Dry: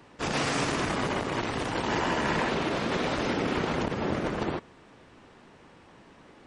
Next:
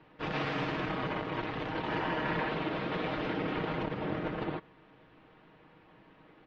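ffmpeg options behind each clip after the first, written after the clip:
ffmpeg -i in.wav -af "lowpass=frequency=3600:width=0.5412,lowpass=frequency=3600:width=1.3066,aecho=1:1:6.4:0.47,volume=-6dB" out.wav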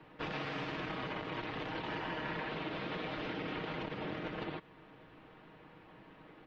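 ffmpeg -i in.wav -filter_complex "[0:a]acrossover=split=170|2100[link_01][link_02][link_03];[link_01]acompressor=threshold=-53dB:ratio=4[link_04];[link_02]acompressor=threshold=-42dB:ratio=4[link_05];[link_03]acompressor=threshold=-48dB:ratio=4[link_06];[link_04][link_05][link_06]amix=inputs=3:normalize=0,volume=2dB" out.wav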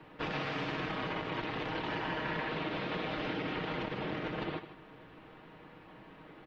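ffmpeg -i in.wav -af "aecho=1:1:72|153:0.224|0.2,volume=3dB" out.wav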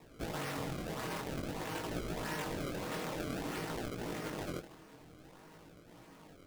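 ffmpeg -i in.wav -af "acrusher=samples=28:mix=1:aa=0.000001:lfo=1:lforange=44.8:lforate=1.6,flanger=delay=17:depth=7.7:speed=0.51" out.wav

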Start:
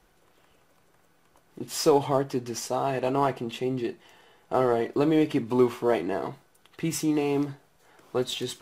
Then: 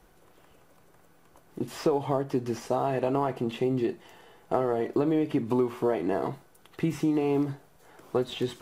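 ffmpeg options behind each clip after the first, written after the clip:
ffmpeg -i in.wav -filter_complex "[0:a]acrossover=split=3300[link_01][link_02];[link_02]acompressor=threshold=-49dB:ratio=4:attack=1:release=60[link_03];[link_01][link_03]amix=inputs=2:normalize=0,equalizer=frequency=3600:width_type=o:width=3:gain=-5,acompressor=threshold=-27dB:ratio=6,volume=5dB" out.wav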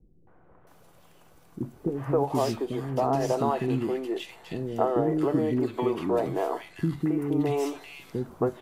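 ffmpeg -i in.wav -filter_complex "[0:a]acrossover=split=340|1800[link_01][link_02][link_03];[link_02]adelay=270[link_04];[link_03]adelay=670[link_05];[link_01][link_04][link_05]amix=inputs=3:normalize=0,volume=3dB" out.wav

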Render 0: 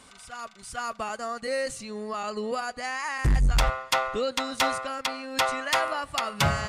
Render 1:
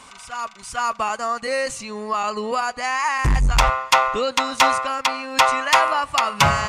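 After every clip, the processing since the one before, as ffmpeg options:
ffmpeg -i in.wav -af "equalizer=frequency=1000:width_type=o:width=0.67:gain=10,equalizer=frequency=2500:width_type=o:width=0.67:gain=6,equalizer=frequency=6300:width_type=o:width=0.67:gain=5,volume=3.5dB" out.wav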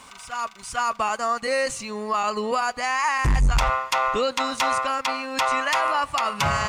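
ffmpeg -i in.wav -af "alimiter=limit=-14dB:level=0:latency=1:release=25,aeval=exprs='sgn(val(0))*max(abs(val(0))-0.00126,0)':channel_layout=same" out.wav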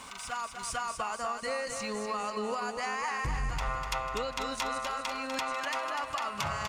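ffmpeg -i in.wav -filter_complex "[0:a]acompressor=threshold=-33dB:ratio=5,asplit=2[link_01][link_02];[link_02]aecho=0:1:247|494|741|988|1235|1482|1729|1976:0.447|0.268|0.161|0.0965|0.0579|0.0347|0.0208|0.0125[link_03];[link_01][link_03]amix=inputs=2:normalize=0" out.wav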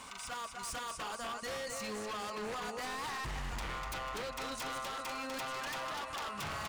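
ffmpeg -i in.wav -af "aeval=exprs='0.0266*(abs(mod(val(0)/0.0266+3,4)-2)-1)':channel_layout=same,volume=-3dB" out.wav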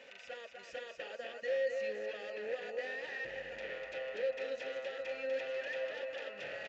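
ffmpeg -i in.wav -filter_complex "[0:a]asplit=3[link_01][link_02][link_03];[link_01]bandpass=frequency=530:width_type=q:width=8,volume=0dB[link_04];[link_02]bandpass=frequency=1840:width_type=q:width=8,volume=-6dB[link_05];[link_03]bandpass=frequency=2480:width_type=q:width=8,volume=-9dB[link_06];[link_04][link_05][link_06]amix=inputs=3:normalize=0,asplit=2[link_07][link_08];[link_08]adelay=1749,volume=-12dB,highshelf=frequency=4000:gain=-39.4[link_09];[link_07][link_09]amix=inputs=2:normalize=0,aresample=16000,aresample=44100,volume=10dB" out.wav

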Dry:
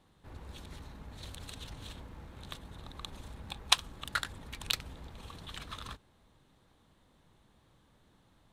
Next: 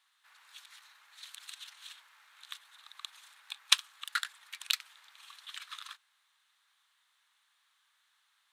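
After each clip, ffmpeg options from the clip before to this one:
ffmpeg -i in.wav -af "highpass=frequency=1300:width=0.5412,highpass=frequency=1300:width=1.3066,volume=1.5dB" out.wav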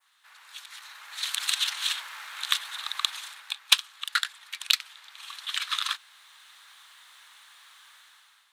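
ffmpeg -i in.wav -af "adynamicequalizer=threshold=0.00501:dfrequency=3700:dqfactor=0.96:tfrequency=3700:tqfactor=0.96:attack=5:release=100:ratio=0.375:range=2:mode=boostabove:tftype=bell,dynaudnorm=framelen=720:gausssize=3:maxgain=14dB,asoftclip=type=tanh:threshold=-9dB,volume=6.5dB" out.wav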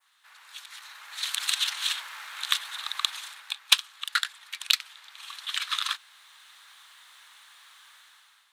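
ffmpeg -i in.wav -af anull out.wav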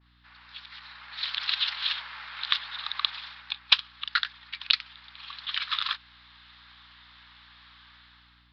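ffmpeg -i in.wav -af "aeval=exprs='val(0)+0.000794*(sin(2*PI*60*n/s)+sin(2*PI*2*60*n/s)/2+sin(2*PI*3*60*n/s)/3+sin(2*PI*4*60*n/s)/4+sin(2*PI*5*60*n/s)/5)':channel_layout=same,aresample=11025,aresample=44100" out.wav

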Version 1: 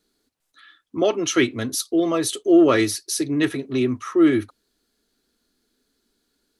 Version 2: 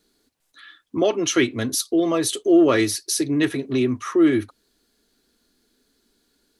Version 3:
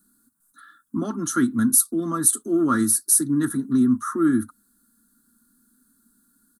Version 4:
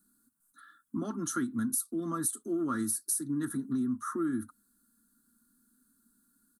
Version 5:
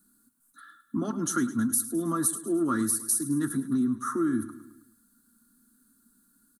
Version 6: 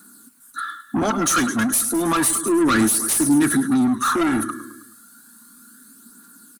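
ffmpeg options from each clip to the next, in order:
ffmpeg -i in.wav -filter_complex "[0:a]bandreject=frequency=1300:width=17,asplit=2[link_01][link_02];[link_02]acompressor=threshold=-28dB:ratio=6,volume=2dB[link_03];[link_01][link_03]amix=inputs=2:normalize=0,volume=-2.5dB" out.wav
ffmpeg -i in.wav -af "firequalizer=gain_entry='entry(120,0);entry(220,14);entry(400,-12);entry(610,-15);entry(960,-1);entry(1400,10);entry(2400,-29);entry(3600,-10);entry(5400,-6);entry(8700,14)':delay=0.05:min_phase=1,volume=-3.5dB" out.wav
ffmpeg -i in.wav -af "acompressor=threshold=-22dB:ratio=4,volume=-7dB" out.wav
ffmpeg -i in.wav -af "aecho=1:1:106|212|318|424|530:0.178|0.0978|0.0538|0.0296|0.0163,volume=5dB" out.wav
ffmpeg -i in.wav -filter_complex "[0:a]asplit=2[link_01][link_02];[link_02]highpass=frequency=720:poles=1,volume=26dB,asoftclip=type=tanh:threshold=-11dB[link_03];[link_01][link_03]amix=inputs=2:normalize=0,lowpass=frequency=7100:poles=1,volume=-6dB,aphaser=in_gain=1:out_gain=1:delay=1.9:decay=0.35:speed=0.32:type=triangular,volume=1.5dB" out.wav

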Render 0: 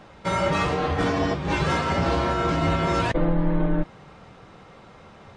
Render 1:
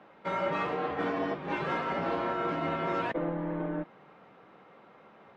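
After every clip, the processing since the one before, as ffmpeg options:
ffmpeg -i in.wav -filter_complex "[0:a]acrossover=split=180 3100:gain=0.0631 1 0.112[link_01][link_02][link_03];[link_01][link_02][link_03]amix=inputs=3:normalize=0,volume=-6.5dB" out.wav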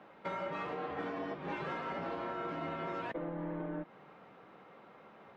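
ffmpeg -i in.wav -af "acompressor=threshold=-35dB:ratio=6,volume=-1dB" out.wav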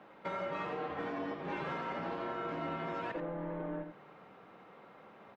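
ffmpeg -i in.wav -af "aecho=1:1:85:0.398" out.wav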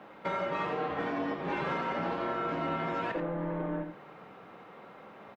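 ffmpeg -i in.wav -filter_complex "[0:a]asplit=2[link_01][link_02];[link_02]adelay=29,volume=-12.5dB[link_03];[link_01][link_03]amix=inputs=2:normalize=0,volume=5.5dB" out.wav

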